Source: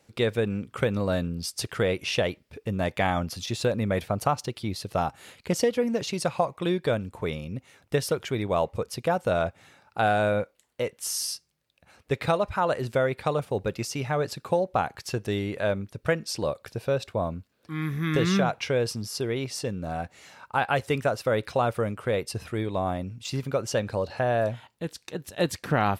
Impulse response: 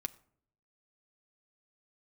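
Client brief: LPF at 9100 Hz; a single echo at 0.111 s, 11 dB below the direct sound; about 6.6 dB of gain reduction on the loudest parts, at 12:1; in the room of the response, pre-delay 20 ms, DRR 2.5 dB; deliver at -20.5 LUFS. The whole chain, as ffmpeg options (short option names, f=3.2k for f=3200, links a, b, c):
-filter_complex "[0:a]lowpass=9.1k,acompressor=threshold=-26dB:ratio=12,aecho=1:1:111:0.282,asplit=2[a][b];[1:a]atrim=start_sample=2205,adelay=20[c];[b][c]afir=irnorm=-1:irlink=0,volume=-1.5dB[d];[a][d]amix=inputs=2:normalize=0,volume=10dB"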